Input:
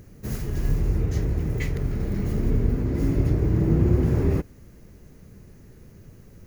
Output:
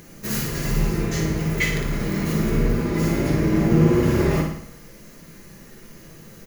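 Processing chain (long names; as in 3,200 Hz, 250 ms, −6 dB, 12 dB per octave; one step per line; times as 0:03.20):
low-pass filter 3,500 Hz 6 dB per octave
spectral tilt +3.5 dB per octave
notch filter 770 Hz, Q 12
comb filter 5.9 ms, depth 36%
flutter between parallel walls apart 9.7 metres, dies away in 0.66 s
convolution reverb RT60 0.35 s, pre-delay 5 ms, DRR 4 dB
level +7.5 dB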